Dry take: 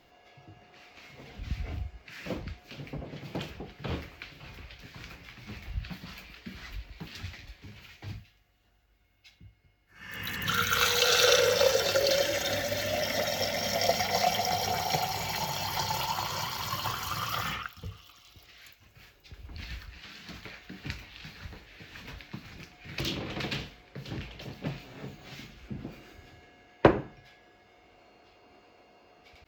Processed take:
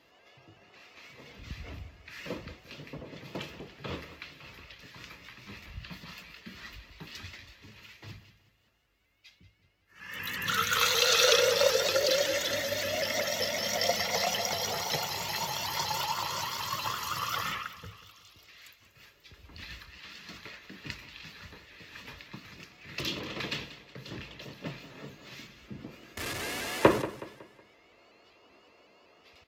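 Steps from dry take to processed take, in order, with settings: 26.17–27.02 s: jump at every zero crossing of -28.5 dBFS; bass shelf 420 Hz -6.5 dB; comb of notches 760 Hz; on a send: feedback delay 185 ms, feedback 40%, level -15 dB; on the sum: resampled via 32 kHz; vibrato with a chosen wave saw up 5.3 Hz, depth 100 cents; trim +1.5 dB

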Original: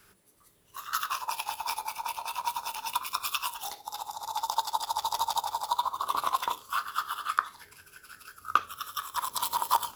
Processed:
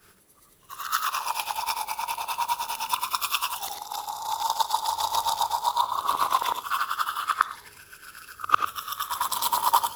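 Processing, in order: short-time spectra conjugated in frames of 200 ms; trim +8 dB

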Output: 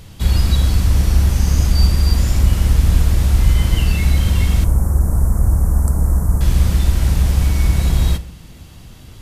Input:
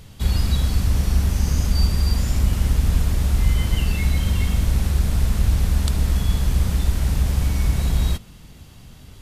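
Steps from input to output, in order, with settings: 4.64–6.41 s: Chebyshev band-stop 1.1–8.6 kHz, order 2; reverberation RT60 0.65 s, pre-delay 3 ms, DRR 11 dB; trim +4 dB

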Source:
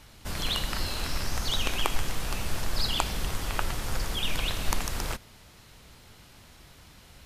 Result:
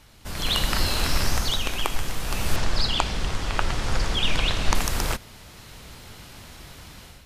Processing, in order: 2.56–4.75 s: low-pass 6.5 kHz 12 dB/octave; level rider gain up to 10 dB; trim -1 dB

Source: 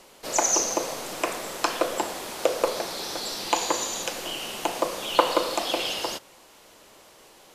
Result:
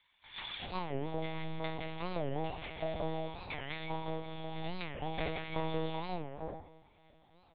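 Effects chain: sorted samples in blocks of 16 samples; bass shelf 130 Hz +11 dB; chord resonator A#2 sus4, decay 0.55 s; transient shaper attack +2 dB, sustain +6 dB; small resonant body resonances 350/720/1700 Hz, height 8 dB, ringing for 20 ms; saturation -30 dBFS, distortion -14 dB; formant shift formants +4 st; bands offset in time highs, lows 370 ms, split 1.3 kHz; monotone LPC vocoder at 8 kHz 160 Hz; warped record 45 rpm, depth 250 cents; trim +2.5 dB

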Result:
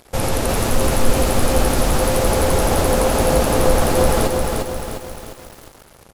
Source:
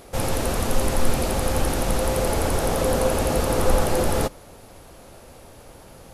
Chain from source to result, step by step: in parallel at +2 dB: peak limiter -16 dBFS, peak gain reduction 10 dB; on the sum: crossover distortion -37 dBFS; resampled via 32 kHz; bit-crushed delay 352 ms, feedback 55%, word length 6-bit, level -3.5 dB; trim -1 dB

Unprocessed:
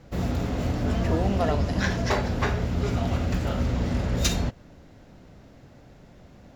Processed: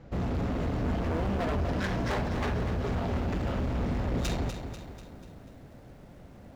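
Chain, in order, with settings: low-pass 2.1 kHz 6 dB/octave; hard clipper -27.5 dBFS, distortion -7 dB; bit-crushed delay 245 ms, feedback 55%, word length 10-bit, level -8.5 dB

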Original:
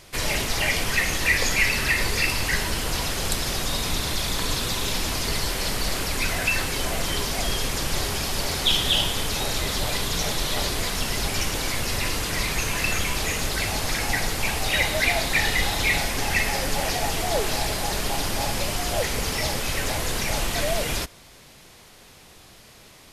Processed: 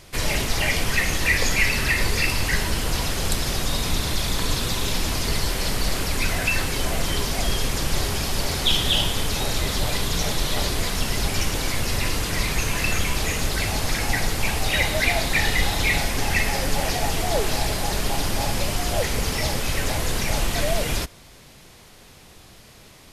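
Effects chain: bass shelf 280 Hz +4.5 dB

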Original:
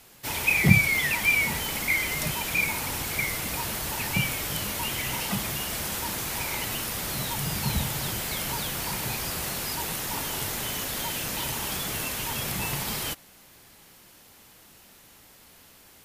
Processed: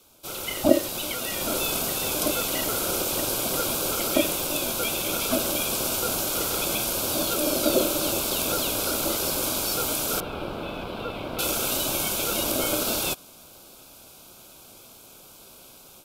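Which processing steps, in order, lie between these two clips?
elliptic band-stop 1.1–2.8 kHz, stop band 40 dB; level rider gain up to 8.5 dB; ring modulator 450 Hz; 10.20–11.39 s: distance through air 440 m

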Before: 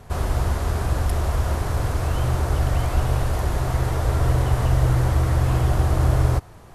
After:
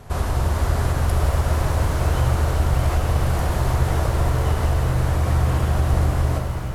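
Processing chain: compression, threshold -19 dBFS, peak gain reduction 7.5 dB; pitch-shifted reverb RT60 3.6 s, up +7 st, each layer -8 dB, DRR 2 dB; trim +2 dB

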